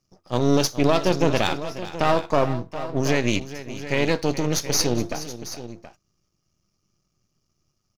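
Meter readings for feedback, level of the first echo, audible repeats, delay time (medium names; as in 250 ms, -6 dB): no regular repeats, -14.5 dB, 2, 420 ms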